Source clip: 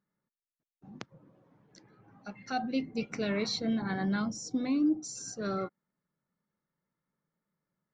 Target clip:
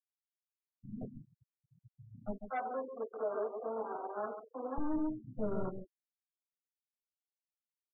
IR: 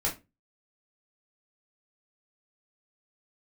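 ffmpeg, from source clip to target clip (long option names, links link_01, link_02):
-filter_complex "[0:a]lowpass=frequency=1200:width=0.5412,lowpass=frequency=1200:width=1.3066,aeval=exprs='(tanh(50.1*val(0)+0.7)-tanh(0.7))/50.1':channel_layout=same,asettb=1/sr,asplit=3[link_01][link_02][link_03];[link_01]atrim=end=2.344[link_04];[link_02]atrim=start=2.34:end=4.78,asetpts=PTS-STARTPTS,afade=type=in:duration=0.004:curve=qsin,afade=type=out:start_time=2.436:duration=0.004:curve=qsin,highpass=frequency=440:width=0.5412,highpass=frequency=440:width=1.3066[link_05];[link_03]atrim=start=4.776[link_06];[link_04][link_05]acrossfade=duration=0.004:curve1=hsin:curve2=qsin[link_07];[link_07][link_06]acrossfade=duration=0.004:curve1=qsin:curve2=hsin,aecho=1:1:139:0.376[link_08];[1:a]atrim=start_sample=2205,afade=type=out:start_time=0.19:duration=0.01,atrim=end_sample=8820,asetrate=61740,aresample=44100[link_09];[link_08][link_09]afir=irnorm=-1:irlink=0,afwtdn=0.00708,afftfilt=real='re*gte(hypot(re,im),0.00708)':imag='im*gte(hypot(re,im),0.00708)':win_size=1024:overlap=0.75,alimiter=level_in=4dB:limit=-24dB:level=0:latency=1:release=64,volume=-4dB,volume=1.5dB"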